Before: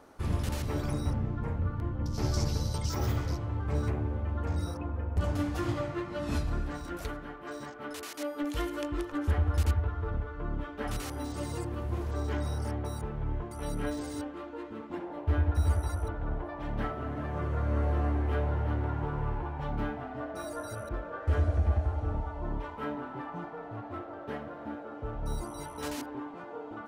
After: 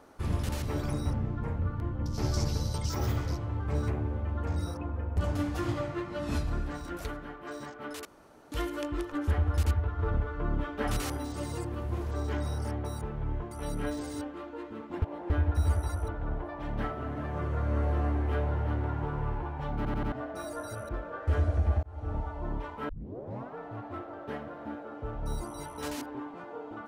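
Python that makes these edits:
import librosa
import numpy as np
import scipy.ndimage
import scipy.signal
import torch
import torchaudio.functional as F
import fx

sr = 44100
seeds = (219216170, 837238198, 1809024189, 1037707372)

y = fx.edit(x, sr, fx.room_tone_fill(start_s=8.05, length_s=0.47),
    fx.clip_gain(start_s=9.99, length_s=1.18, db=4.0),
    fx.reverse_span(start_s=15.02, length_s=0.28),
    fx.stutter_over(start_s=19.76, slice_s=0.09, count=4),
    fx.fade_in_span(start_s=21.83, length_s=0.34),
    fx.tape_start(start_s=22.89, length_s=0.68), tone=tone)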